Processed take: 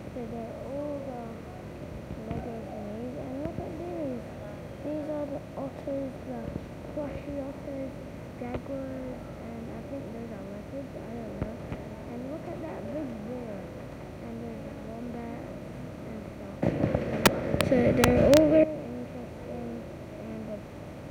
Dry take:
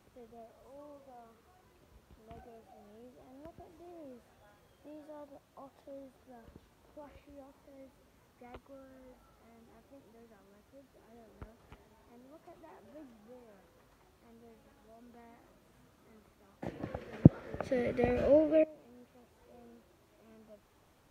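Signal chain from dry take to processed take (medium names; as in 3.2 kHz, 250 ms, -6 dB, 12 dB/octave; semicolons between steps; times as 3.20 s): spectral levelling over time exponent 0.6; integer overflow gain 13.5 dB; trim +4.5 dB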